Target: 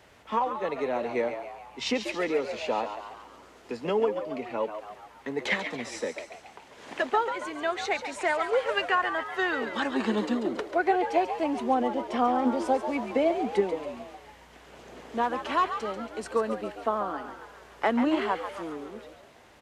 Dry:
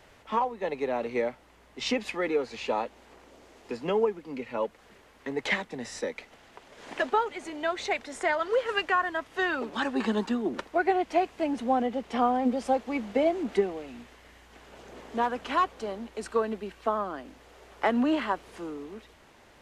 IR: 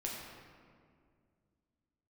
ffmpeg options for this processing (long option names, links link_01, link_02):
-filter_complex "[0:a]highpass=48,asplit=7[link_01][link_02][link_03][link_04][link_05][link_06][link_07];[link_02]adelay=139,afreqshift=91,volume=-9dB[link_08];[link_03]adelay=278,afreqshift=182,volume=-14.5dB[link_09];[link_04]adelay=417,afreqshift=273,volume=-20dB[link_10];[link_05]adelay=556,afreqshift=364,volume=-25.5dB[link_11];[link_06]adelay=695,afreqshift=455,volume=-31.1dB[link_12];[link_07]adelay=834,afreqshift=546,volume=-36.6dB[link_13];[link_01][link_08][link_09][link_10][link_11][link_12][link_13]amix=inputs=7:normalize=0"